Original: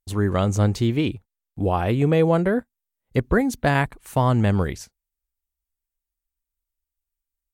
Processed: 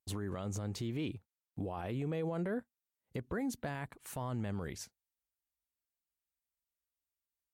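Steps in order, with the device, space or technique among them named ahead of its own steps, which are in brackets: podcast mastering chain (high-pass 92 Hz 12 dB/octave; de-esser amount 55%; compression 2:1, threshold -27 dBFS, peak gain reduction 7.5 dB; peak limiter -23.5 dBFS, peak gain reduction 11 dB; trim -5.5 dB; MP3 96 kbps 48 kHz)

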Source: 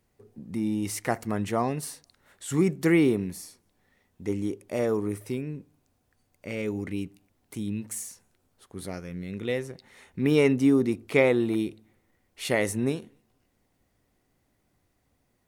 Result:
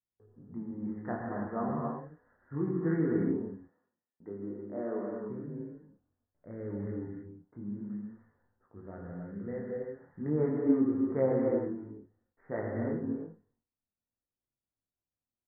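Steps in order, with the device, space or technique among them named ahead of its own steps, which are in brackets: double-tracked vocal (doubling 30 ms -11 dB; chorus 0.47 Hz, delay 18 ms, depth 7.6 ms); 3.34–5.24 s: high-pass 210 Hz 12 dB/octave; gate with hold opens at -57 dBFS; steep low-pass 1.8 kHz 96 dB/octave; gated-style reverb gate 360 ms flat, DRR -1.5 dB; trim -7.5 dB

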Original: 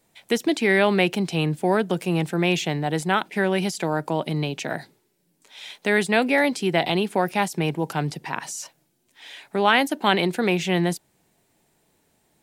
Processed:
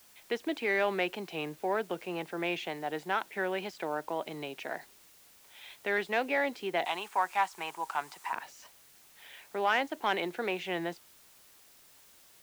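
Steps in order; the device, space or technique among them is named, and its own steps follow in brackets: tape answering machine (band-pass 390–3000 Hz; saturation -8.5 dBFS, distortion -23 dB; wow and flutter; white noise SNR 24 dB); 6.85–8.33 s: graphic EQ 125/250/500/1000/8000 Hz -10/-9/-10/+11/+7 dB; trim -7.5 dB

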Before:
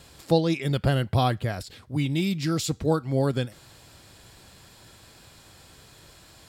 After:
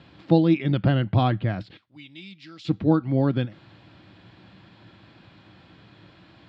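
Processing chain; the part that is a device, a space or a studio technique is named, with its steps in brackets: 1.77–2.65 s: pre-emphasis filter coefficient 0.97; guitar cabinet (cabinet simulation 93–3500 Hz, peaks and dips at 110 Hz +6 dB, 190 Hz +9 dB, 310 Hz +9 dB, 440 Hz -5 dB)

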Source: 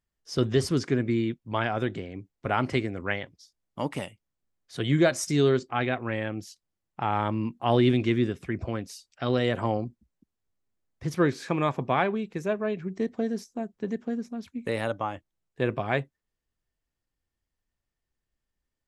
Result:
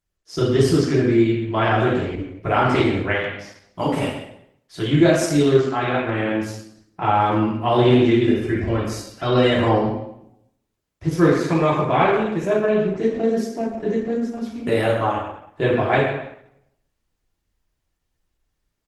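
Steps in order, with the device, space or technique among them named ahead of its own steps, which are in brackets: speakerphone in a meeting room (reverberation RT60 0.75 s, pre-delay 3 ms, DRR -6.5 dB; speakerphone echo 130 ms, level -10 dB; level rider gain up to 4.5 dB; trim -1.5 dB; Opus 16 kbps 48 kHz)

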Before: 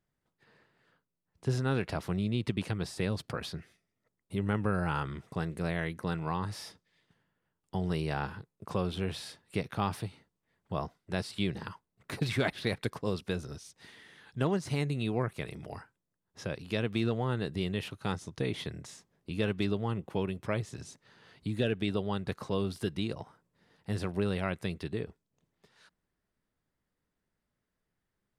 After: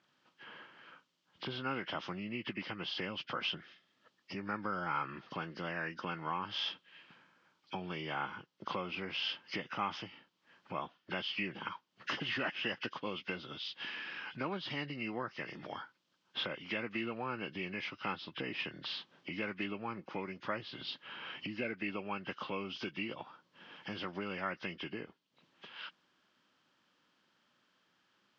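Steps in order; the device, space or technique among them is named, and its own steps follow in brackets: hearing aid with frequency lowering (knee-point frequency compression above 1.4 kHz 1.5:1; compression 2:1, threshold -57 dBFS, peak gain reduction 17.5 dB; cabinet simulation 320–5400 Hz, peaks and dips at 430 Hz -10 dB, 680 Hz -6 dB, 1.3 kHz +3 dB, 3.1 kHz +8 dB); trim +14.5 dB

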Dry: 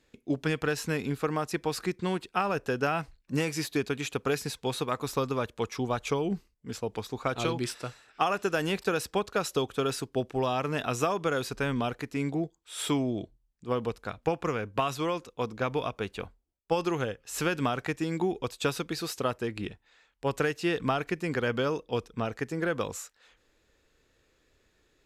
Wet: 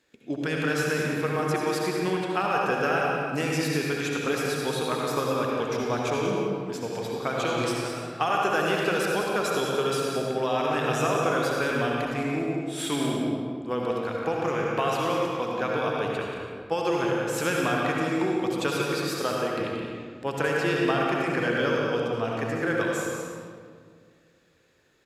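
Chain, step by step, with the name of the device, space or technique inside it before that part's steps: stadium PA (high-pass 230 Hz 6 dB/octave; peaking EQ 1.6 kHz +3.5 dB 0.22 oct; loudspeakers at several distances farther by 62 m -9 dB, 74 m -11 dB; reverberation RT60 2.0 s, pre-delay 60 ms, DRR -1.5 dB)

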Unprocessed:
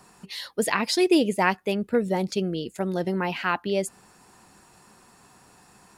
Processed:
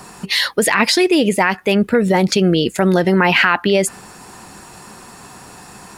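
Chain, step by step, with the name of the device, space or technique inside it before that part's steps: loud club master (compression 3:1, threshold -24 dBFS, peak gain reduction 7 dB; hard clipper -12 dBFS, distortion -39 dB; loudness maximiser +22 dB); dynamic bell 1.8 kHz, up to +7 dB, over -28 dBFS, Q 0.95; trim -6 dB

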